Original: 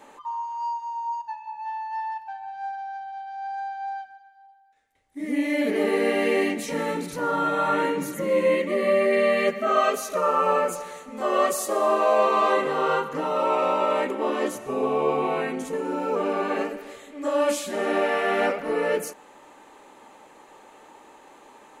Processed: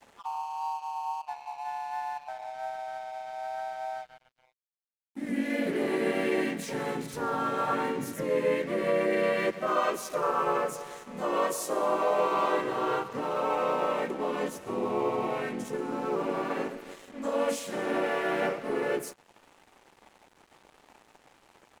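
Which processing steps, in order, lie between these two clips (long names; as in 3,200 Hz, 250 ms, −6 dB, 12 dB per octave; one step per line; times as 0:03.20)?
in parallel at +2.5 dB: downward compressor, threshold −35 dBFS, peak gain reduction 18 dB
on the sum: pitch-shifted copies added −3 semitones −5 dB, +3 semitones −13 dB
frequency shifter −17 Hz
dead-zone distortion −40 dBFS
level −8.5 dB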